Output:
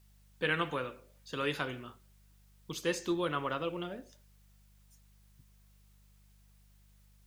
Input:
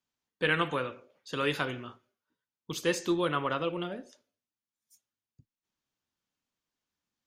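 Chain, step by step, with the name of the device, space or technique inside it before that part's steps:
video cassette with head-switching buzz (hum with harmonics 50 Hz, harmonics 4, −59 dBFS −7 dB per octave; white noise bed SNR 33 dB)
level −4 dB

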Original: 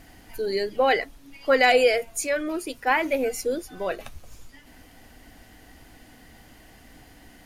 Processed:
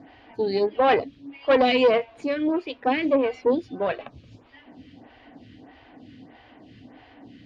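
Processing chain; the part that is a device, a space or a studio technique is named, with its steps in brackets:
vibe pedal into a guitar amplifier (phaser with staggered stages 1.6 Hz; tube saturation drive 21 dB, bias 0.65; loudspeaker in its box 100–3,700 Hz, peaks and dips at 110 Hz +7 dB, 270 Hz +6 dB, 1,400 Hz −6 dB, 2,000 Hz −4 dB)
level +9 dB

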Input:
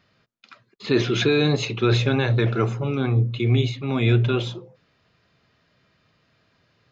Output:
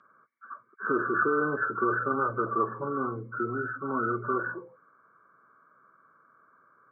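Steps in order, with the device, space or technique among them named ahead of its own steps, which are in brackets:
hearing aid with frequency lowering (hearing-aid frequency compression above 1,100 Hz 4 to 1; downward compressor 2 to 1, threshold −26 dBFS, peak gain reduction 7.5 dB; loudspeaker in its box 310–6,300 Hz, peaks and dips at 730 Hz −9 dB, 1,100 Hz +9 dB, 2,000 Hz −7 dB, 3,400 Hz +7 dB)

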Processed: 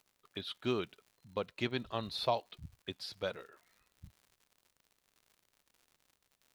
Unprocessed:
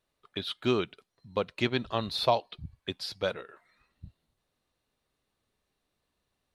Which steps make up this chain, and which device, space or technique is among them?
vinyl LP (surface crackle 120 per second −45 dBFS; white noise bed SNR 44 dB)
level −7 dB

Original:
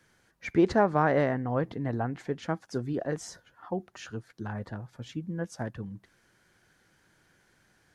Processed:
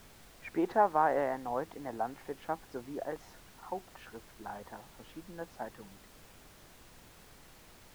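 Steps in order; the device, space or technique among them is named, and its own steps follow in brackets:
horn gramophone (band-pass filter 280–3,000 Hz; parametric band 850 Hz +10 dB 0.77 octaves; tape wow and flutter; pink noise bed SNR 19 dB)
level −8 dB

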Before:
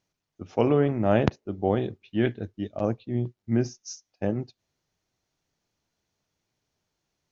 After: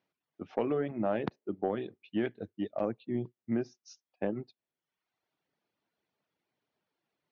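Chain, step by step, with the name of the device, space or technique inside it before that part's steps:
reverb reduction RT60 0.82 s
AM radio (band-pass filter 200–3,400 Hz; downward compressor 6 to 1, threshold −26 dBFS, peak gain reduction 9 dB; soft clipping −16.5 dBFS, distortion −24 dB)
low-pass filter 5,100 Hz

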